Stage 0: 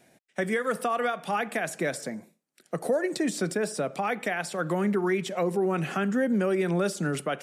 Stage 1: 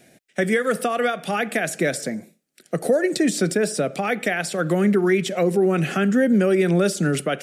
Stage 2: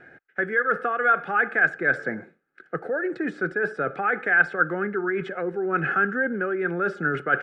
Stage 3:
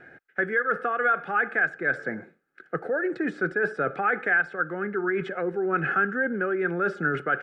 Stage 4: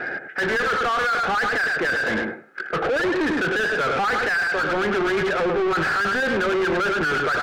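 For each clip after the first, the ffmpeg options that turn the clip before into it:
-af "equalizer=f=980:t=o:w=0.6:g=-11.5,volume=8dB"
-af "aecho=1:1:2.4:0.48,areverse,acompressor=threshold=-26dB:ratio=6,areverse,lowpass=f=1.5k:t=q:w=10"
-af "alimiter=limit=-13.5dB:level=0:latency=1:release=472"
-filter_complex "[0:a]asplit=2[a][b];[b]adelay=103,lowpass=f=1.7k:p=1,volume=-8.5dB,asplit=2[c][d];[d]adelay=103,lowpass=f=1.7k:p=1,volume=0.16[e];[a][c][e]amix=inputs=3:normalize=0,asplit=2[f][g];[g]highpass=f=720:p=1,volume=33dB,asoftclip=type=tanh:threshold=-12.5dB[h];[f][h]amix=inputs=2:normalize=0,lowpass=f=1.7k:p=1,volume=-6dB,asoftclip=type=tanh:threshold=-16.5dB"

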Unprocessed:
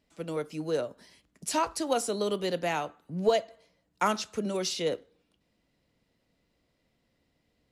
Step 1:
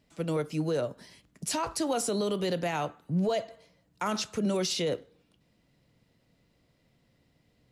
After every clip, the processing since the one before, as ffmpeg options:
-af "equalizer=f=130:t=o:w=0.88:g=7.5,alimiter=level_in=0.5dB:limit=-24dB:level=0:latency=1:release=39,volume=-0.5dB,volume=3.5dB"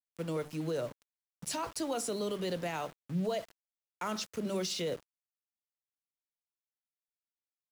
-af "bandreject=f=50:t=h:w=6,bandreject=f=100:t=h:w=6,bandreject=f=150:t=h:w=6,bandreject=f=200:t=h:w=6,bandreject=f=250:t=h:w=6,bandreject=f=300:t=h:w=6,aeval=exprs='val(0)*gte(abs(val(0)),0.00944)':c=same,equalizer=f=770:t=o:w=0.26:g=-2,volume=-5dB"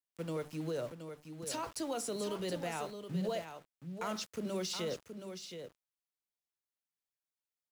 -af "aecho=1:1:722:0.376,volume=-3dB"

